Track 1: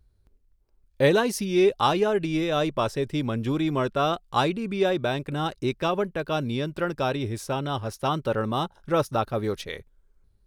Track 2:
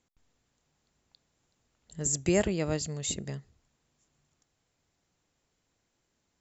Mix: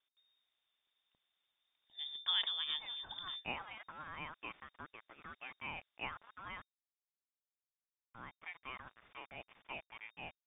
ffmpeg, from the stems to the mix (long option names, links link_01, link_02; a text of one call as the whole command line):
ffmpeg -i stem1.wav -i stem2.wav -filter_complex "[0:a]highpass=1100,aderivative,aeval=exprs='val(0)*gte(abs(val(0)),0.00355)':channel_layout=same,adelay=1650,volume=0.5dB,asplit=3[link_01][link_02][link_03];[link_01]atrim=end=6.65,asetpts=PTS-STARTPTS,afade=type=out:start_time=6.646:duration=0.004:curve=hsin[link_04];[link_02]atrim=start=6.65:end=8.08,asetpts=PTS-STARTPTS,volume=0[link_05];[link_03]atrim=start=8.08,asetpts=PTS-STARTPTS,afade=type=in:duration=0.004:curve=hsin[link_06];[link_04][link_05][link_06]concat=n=3:v=0:a=1[link_07];[1:a]volume=-7dB,asplit=2[link_08][link_09];[link_09]apad=whole_len=534255[link_10];[link_07][link_10]sidechaincompress=threshold=-51dB:ratio=8:attack=16:release=107[link_11];[link_11][link_08]amix=inputs=2:normalize=0,equalizer=frequency=440:width=0.65:gain=-4,lowpass=frequency=3100:width_type=q:width=0.5098,lowpass=frequency=3100:width_type=q:width=0.6013,lowpass=frequency=3100:width_type=q:width=0.9,lowpass=frequency=3100:width_type=q:width=2.563,afreqshift=-3700" out.wav